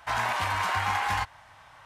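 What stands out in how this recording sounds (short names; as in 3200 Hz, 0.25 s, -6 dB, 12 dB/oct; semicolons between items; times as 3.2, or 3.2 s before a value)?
noise floor -54 dBFS; spectral tilt -3.0 dB/oct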